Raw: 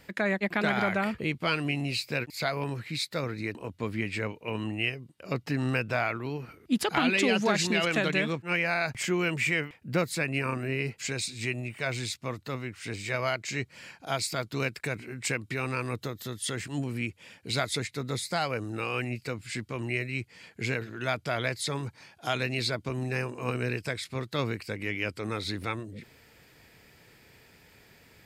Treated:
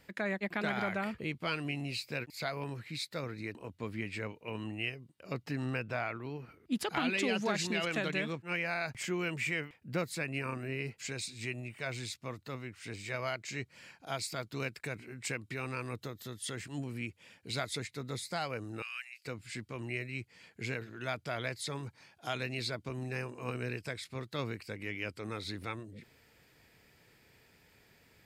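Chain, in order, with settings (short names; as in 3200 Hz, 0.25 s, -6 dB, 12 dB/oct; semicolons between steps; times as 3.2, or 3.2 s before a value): 5.65–6.72 high shelf 4200 Hz -5.5 dB; 18.82–19.25 HPF 1500 Hz 24 dB/oct; gain -7 dB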